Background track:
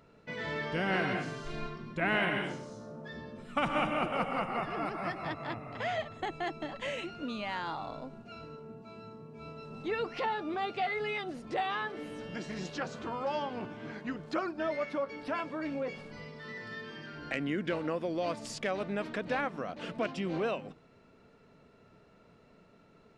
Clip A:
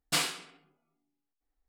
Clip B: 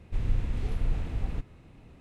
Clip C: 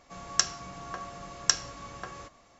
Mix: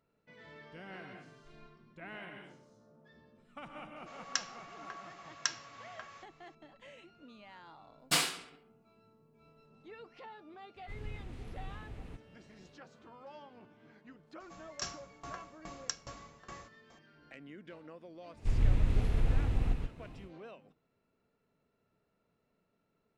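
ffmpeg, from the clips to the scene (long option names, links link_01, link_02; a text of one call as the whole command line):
ffmpeg -i bed.wav -i cue0.wav -i cue1.wav -i cue2.wav -filter_complex "[3:a]asplit=2[link_01][link_02];[2:a]asplit=2[link_03][link_04];[0:a]volume=-17.5dB[link_05];[link_01]bandpass=frequency=2200:width_type=q:width=0.81:csg=0[link_06];[link_03]lowshelf=frequency=78:gain=-10[link_07];[link_02]aeval=exprs='val(0)*pow(10,-23*if(lt(mod(2.4*n/s,1),2*abs(2.4)/1000),1-mod(2.4*n/s,1)/(2*abs(2.4)/1000),(mod(2.4*n/s,1)-2*abs(2.4)/1000)/(1-2*abs(2.4)/1000))/20)':channel_layout=same[link_08];[link_04]aecho=1:1:127:0.668[link_09];[link_06]atrim=end=2.59,asetpts=PTS-STARTPTS,volume=-4dB,afade=type=in:duration=0.004:curve=hsin,afade=type=out:start_time=2.586:duration=0.004:curve=hsin,adelay=3960[link_10];[1:a]atrim=end=1.68,asetpts=PTS-STARTPTS,volume=-0.5dB,afade=type=in:duration=0.004:curve=hsin,afade=type=out:start_time=1.676:duration=0.004:curve=hsin,adelay=7990[link_11];[link_07]atrim=end=2,asetpts=PTS-STARTPTS,volume=-9.5dB,afade=type=in:duration=0.004:curve=hsin,afade=type=out:start_time=1.996:duration=0.004:curve=hsin,adelay=10760[link_12];[link_08]atrim=end=2.59,asetpts=PTS-STARTPTS,volume=-0.5dB,afade=type=in:duration=0.004:curve=hsin,afade=type=out:start_time=2.586:duration=0.004:curve=hsin,adelay=14400[link_13];[link_09]atrim=end=2,asetpts=PTS-STARTPTS,volume=-0.5dB,afade=type=in:duration=0.1,afade=type=out:start_time=1.9:duration=0.1,adelay=18330[link_14];[link_05][link_10][link_11][link_12][link_13][link_14]amix=inputs=6:normalize=0" out.wav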